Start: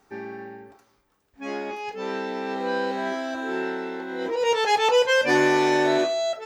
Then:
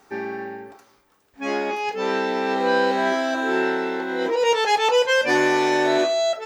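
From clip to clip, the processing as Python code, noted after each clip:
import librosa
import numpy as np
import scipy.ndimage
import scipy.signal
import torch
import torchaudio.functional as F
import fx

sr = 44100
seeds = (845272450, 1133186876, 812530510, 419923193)

y = fx.low_shelf(x, sr, hz=160.0, db=-9.0)
y = fx.rider(y, sr, range_db=3, speed_s=0.5)
y = F.gain(torch.from_numpy(y), 4.5).numpy()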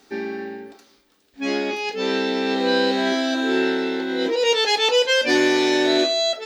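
y = fx.graphic_eq_10(x, sr, hz=(125, 250, 1000, 4000), db=(-8, 7, -7, 9))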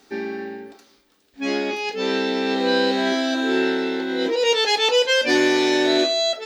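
y = x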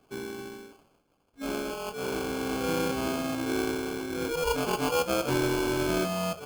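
y = fx.sample_hold(x, sr, seeds[0], rate_hz=1900.0, jitter_pct=0)
y = F.gain(torch.from_numpy(y), -9.0).numpy()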